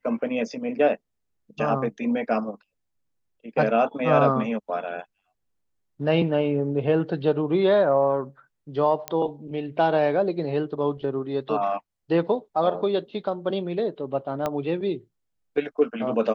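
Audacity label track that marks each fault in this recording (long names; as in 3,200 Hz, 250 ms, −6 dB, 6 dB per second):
9.080000	9.080000	click −11 dBFS
14.460000	14.460000	click −13 dBFS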